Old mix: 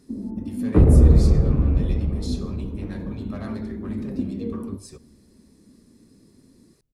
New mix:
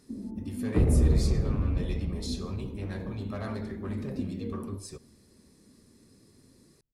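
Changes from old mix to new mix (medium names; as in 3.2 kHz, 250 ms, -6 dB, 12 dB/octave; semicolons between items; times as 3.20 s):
first sound -7.0 dB; second sound -9.5 dB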